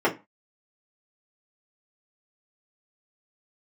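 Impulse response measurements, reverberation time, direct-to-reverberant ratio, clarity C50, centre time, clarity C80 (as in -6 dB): not exponential, -5.5 dB, 15.5 dB, 13 ms, 23.5 dB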